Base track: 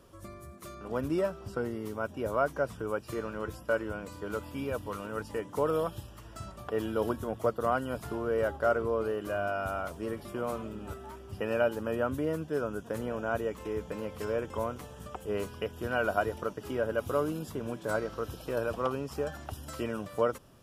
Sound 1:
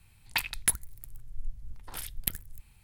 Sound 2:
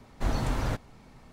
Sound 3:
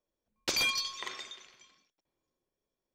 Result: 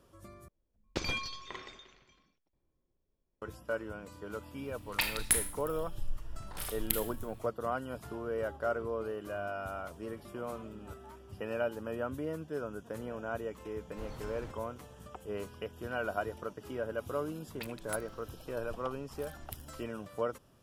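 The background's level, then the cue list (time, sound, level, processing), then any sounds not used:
base track −6 dB
0:00.48: overwrite with 3 −2.5 dB + RIAA equalisation playback
0:04.63: mix in 1 −2 dB + four-comb reverb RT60 0.48 s, combs from 26 ms, DRR 4.5 dB
0:13.76: mix in 2 −17.5 dB
0:17.25: mix in 1 −16 dB

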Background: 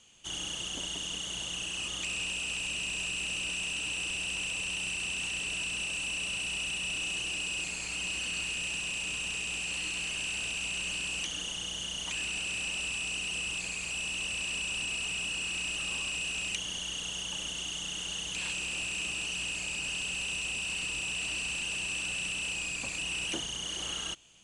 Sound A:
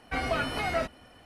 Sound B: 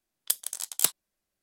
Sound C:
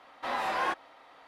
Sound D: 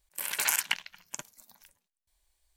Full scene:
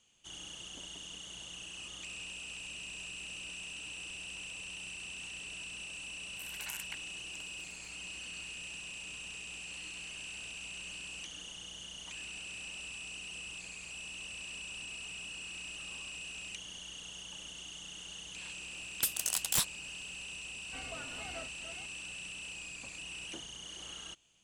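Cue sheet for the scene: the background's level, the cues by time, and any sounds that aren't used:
background −10 dB
0:06.21: mix in D −16.5 dB
0:18.73: mix in B −16 dB + sine wavefolder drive 19 dB, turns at −5 dBFS
0:20.61: mix in A −18 dB + delay that plays each chunk backwards 464 ms, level −7 dB
not used: C

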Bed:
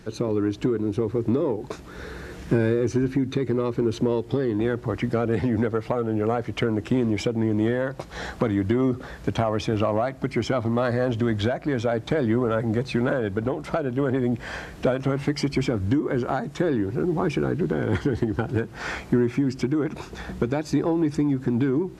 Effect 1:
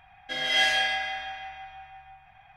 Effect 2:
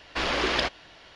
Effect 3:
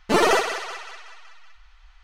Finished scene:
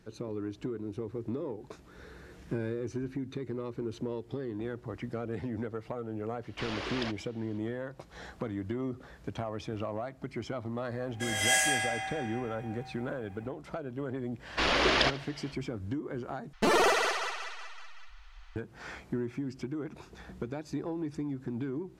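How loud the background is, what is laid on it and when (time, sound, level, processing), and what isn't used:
bed −13 dB
0:06.43: mix in 2 −11.5 dB
0:10.91: mix in 1 −2.5 dB + high shelf with overshoot 5,700 Hz +12.5 dB, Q 3
0:14.42: mix in 2, fades 0.05 s + repeating echo 72 ms, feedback 45%, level −18 dB
0:16.53: overwrite with 3 + brickwall limiter −16 dBFS

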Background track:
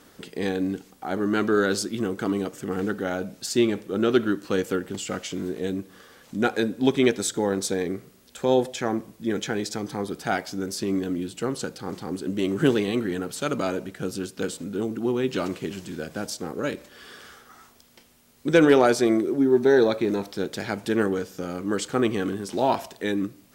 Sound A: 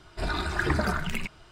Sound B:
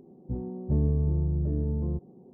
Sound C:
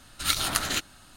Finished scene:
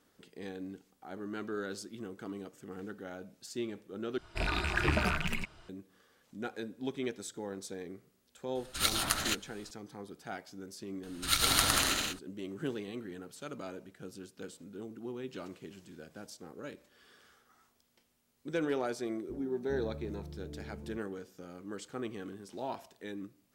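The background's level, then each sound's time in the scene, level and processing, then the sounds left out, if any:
background track −16.5 dB
0:04.18: overwrite with A −4 dB + loose part that buzzes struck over −32 dBFS, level −18 dBFS
0:08.55: mix in C −4.5 dB
0:11.03: mix in C −4 dB + bouncing-ball delay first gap 110 ms, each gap 0.7×, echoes 5, each echo −2 dB
0:19.00: mix in B −12.5 dB + parametric band 100 Hz −14 dB 0.98 octaves

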